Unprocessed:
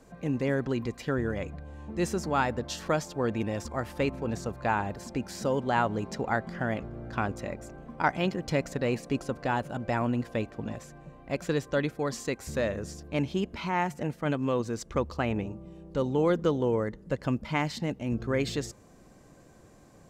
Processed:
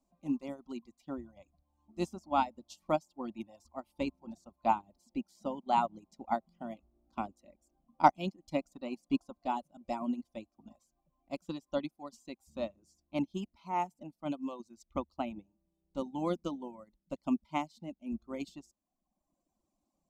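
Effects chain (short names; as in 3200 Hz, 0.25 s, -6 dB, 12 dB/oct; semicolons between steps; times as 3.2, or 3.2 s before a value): fixed phaser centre 450 Hz, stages 6; reverb removal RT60 1.3 s; upward expander 2.5:1, over -42 dBFS; gain +7 dB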